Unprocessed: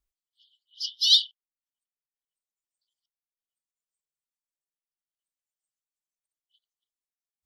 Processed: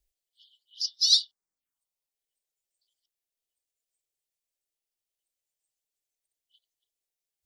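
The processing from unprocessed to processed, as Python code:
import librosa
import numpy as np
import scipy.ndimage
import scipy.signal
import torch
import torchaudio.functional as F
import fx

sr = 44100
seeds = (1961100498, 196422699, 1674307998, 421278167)

y = fx.env_phaser(x, sr, low_hz=200.0, high_hz=3100.0, full_db=-35.5)
y = y * librosa.db_to_amplitude(5.5)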